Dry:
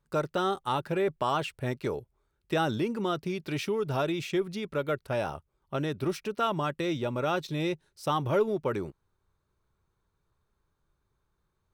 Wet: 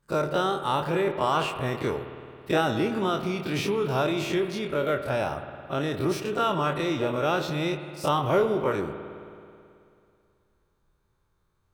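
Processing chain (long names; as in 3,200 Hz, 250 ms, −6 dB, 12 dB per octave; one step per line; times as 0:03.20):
every bin's largest magnitude spread in time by 60 ms
spring reverb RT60 2.5 s, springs 54 ms, chirp 70 ms, DRR 8.5 dB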